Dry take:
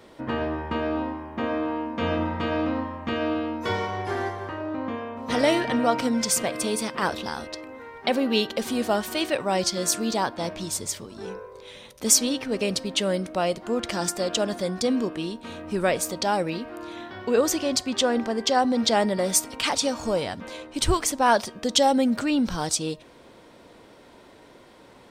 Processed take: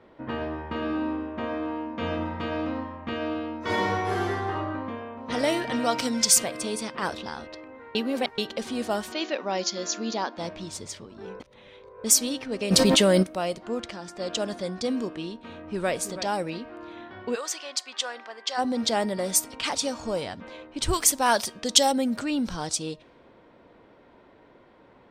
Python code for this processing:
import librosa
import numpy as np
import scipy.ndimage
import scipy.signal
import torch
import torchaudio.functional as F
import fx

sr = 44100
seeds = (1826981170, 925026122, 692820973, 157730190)

y = fx.reverb_throw(x, sr, start_s=0.67, length_s=0.62, rt60_s=1.9, drr_db=3.0)
y = fx.reverb_throw(y, sr, start_s=3.59, length_s=0.95, rt60_s=1.4, drr_db=-5.5)
y = fx.peak_eq(y, sr, hz=5000.0, db=8.5, octaves=2.2, at=(5.72, 6.44))
y = fx.brickwall_bandpass(y, sr, low_hz=180.0, high_hz=7300.0, at=(9.11, 10.36), fade=0.02)
y = fx.env_flatten(y, sr, amount_pct=100, at=(12.7, 13.22), fade=0.02)
y = fx.echo_throw(y, sr, start_s=15.35, length_s=0.58, ms=330, feedback_pct=10, wet_db=-11.5)
y = fx.highpass(y, sr, hz=980.0, slope=12, at=(17.34, 18.57), fade=0.02)
y = fx.quant_companded(y, sr, bits=8, at=(19.36, 20.05))
y = fx.high_shelf(y, sr, hz=2100.0, db=7.5, at=(20.93, 21.92))
y = fx.edit(y, sr, fx.reverse_span(start_s=7.95, length_s=0.43),
    fx.reverse_span(start_s=11.4, length_s=0.64),
    fx.fade_down_up(start_s=13.74, length_s=0.56, db=-8.5, fade_s=0.28), tone=tone)
y = fx.env_lowpass(y, sr, base_hz=2100.0, full_db=-18.5)
y = fx.high_shelf(y, sr, hz=9500.0, db=8.5)
y = y * librosa.db_to_amplitude(-4.0)